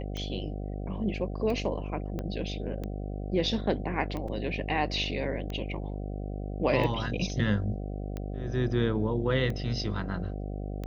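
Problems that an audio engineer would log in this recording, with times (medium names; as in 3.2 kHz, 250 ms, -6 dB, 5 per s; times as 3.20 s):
buzz 50 Hz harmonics 15 -35 dBFS
tick 45 rpm -23 dBFS
2.19 s: pop -22 dBFS
4.28 s: dropout 3.5 ms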